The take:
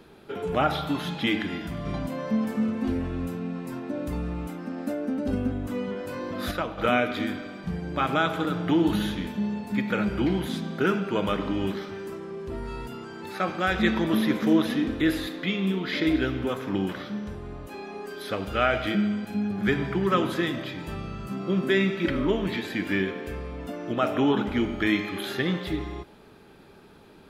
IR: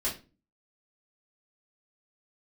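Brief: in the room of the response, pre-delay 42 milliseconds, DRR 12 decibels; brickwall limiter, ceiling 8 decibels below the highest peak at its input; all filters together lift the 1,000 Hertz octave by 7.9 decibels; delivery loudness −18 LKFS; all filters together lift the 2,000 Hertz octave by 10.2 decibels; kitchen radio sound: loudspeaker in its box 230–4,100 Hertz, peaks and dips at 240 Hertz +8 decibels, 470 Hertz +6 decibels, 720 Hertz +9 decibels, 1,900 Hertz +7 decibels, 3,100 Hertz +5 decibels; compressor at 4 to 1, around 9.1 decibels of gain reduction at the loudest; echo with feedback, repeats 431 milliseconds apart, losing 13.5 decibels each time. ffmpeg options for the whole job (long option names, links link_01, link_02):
-filter_complex "[0:a]equalizer=frequency=1000:width_type=o:gain=3.5,equalizer=frequency=2000:width_type=o:gain=6,acompressor=threshold=-26dB:ratio=4,alimiter=limit=-20.5dB:level=0:latency=1,aecho=1:1:431|862:0.211|0.0444,asplit=2[link_01][link_02];[1:a]atrim=start_sample=2205,adelay=42[link_03];[link_02][link_03]afir=irnorm=-1:irlink=0,volume=-17.5dB[link_04];[link_01][link_04]amix=inputs=2:normalize=0,highpass=230,equalizer=frequency=240:width_type=q:width=4:gain=8,equalizer=frequency=470:width_type=q:width=4:gain=6,equalizer=frequency=720:width_type=q:width=4:gain=9,equalizer=frequency=1900:width_type=q:width=4:gain=7,equalizer=frequency=3100:width_type=q:width=4:gain=5,lowpass=frequency=4100:width=0.5412,lowpass=frequency=4100:width=1.3066,volume=10.5dB"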